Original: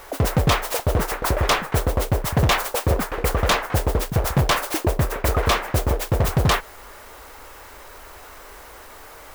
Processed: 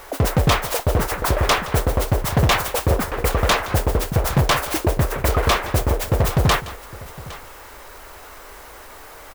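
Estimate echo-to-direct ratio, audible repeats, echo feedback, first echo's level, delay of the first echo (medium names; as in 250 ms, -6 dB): -15.0 dB, 2, no regular repeats, -17.5 dB, 169 ms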